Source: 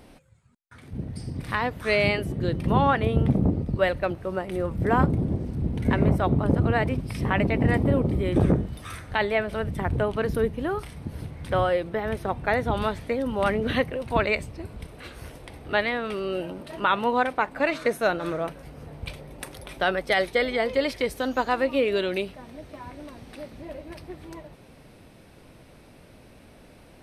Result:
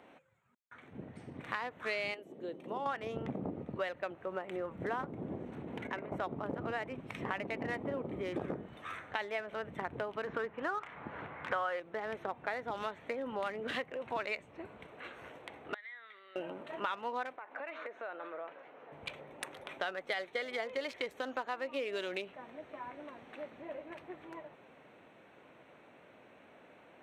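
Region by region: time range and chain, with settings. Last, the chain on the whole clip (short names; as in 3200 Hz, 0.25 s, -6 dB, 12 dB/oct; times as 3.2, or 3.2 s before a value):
2.14–2.86 HPF 340 Hz + bell 1600 Hz -15 dB 2.1 oct
5.52–6.12 negative-ratio compressor -26 dBFS + low shelf 230 Hz -7.5 dB + mismatched tape noise reduction encoder only
10.27–11.8 LPF 3800 Hz + bell 1300 Hz +12 dB 1.9 oct
15.74–16.36 double band-pass 2700 Hz, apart 0.84 oct + compressor 3:1, threshold -45 dBFS
17.36–18.92 compressor 16:1, threshold -32 dBFS + BPF 380–5700 Hz + air absorption 98 m
whole clip: Wiener smoothing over 9 samples; weighting filter A; compressor 4:1, threshold -33 dBFS; gain -2 dB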